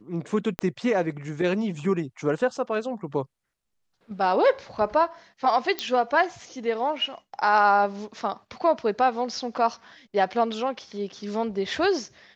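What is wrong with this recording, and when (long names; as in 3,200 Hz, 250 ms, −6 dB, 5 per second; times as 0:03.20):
0:00.59: click −12 dBFS
0:05.79: click −12 dBFS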